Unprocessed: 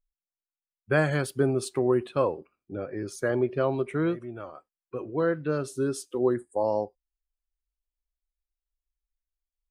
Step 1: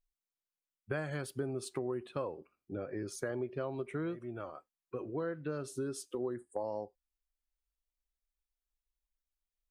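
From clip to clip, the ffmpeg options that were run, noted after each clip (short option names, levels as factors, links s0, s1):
-af "acompressor=threshold=0.0251:ratio=4,volume=0.708"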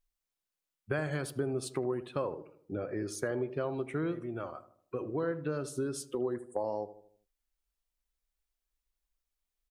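-filter_complex "[0:a]asplit=2[s0][s1];[s1]adelay=78,lowpass=f=1100:p=1,volume=0.251,asplit=2[s2][s3];[s3]adelay=78,lowpass=f=1100:p=1,volume=0.51,asplit=2[s4][s5];[s5]adelay=78,lowpass=f=1100:p=1,volume=0.51,asplit=2[s6][s7];[s7]adelay=78,lowpass=f=1100:p=1,volume=0.51,asplit=2[s8][s9];[s9]adelay=78,lowpass=f=1100:p=1,volume=0.51[s10];[s0][s2][s4][s6][s8][s10]amix=inputs=6:normalize=0,volume=1.5"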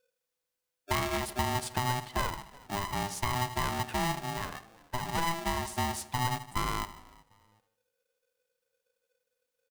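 -filter_complex "[0:a]asplit=3[s0][s1][s2];[s1]adelay=374,afreqshift=-66,volume=0.0631[s3];[s2]adelay=748,afreqshift=-132,volume=0.0214[s4];[s0][s3][s4]amix=inputs=3:normalize=0,aeval=exprs='val(0)*sgn(sin(2*PI*500*n/s))':c=same,volume=1.33"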